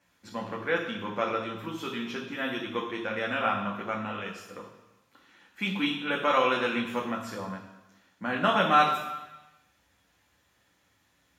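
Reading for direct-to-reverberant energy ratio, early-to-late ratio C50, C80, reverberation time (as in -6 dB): -2.0 dB, 6.0 dB, 8.0 dB, 1.1 s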